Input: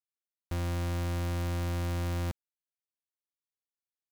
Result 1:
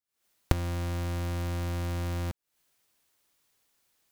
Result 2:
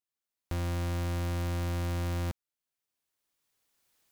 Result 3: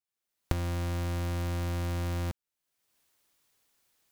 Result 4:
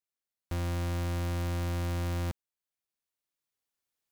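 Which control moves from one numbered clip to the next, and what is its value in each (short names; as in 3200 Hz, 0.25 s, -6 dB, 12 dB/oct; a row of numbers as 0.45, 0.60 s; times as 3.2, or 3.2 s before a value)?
recorder AGC, rising by: 88, 14, 35, 5.1 dB/s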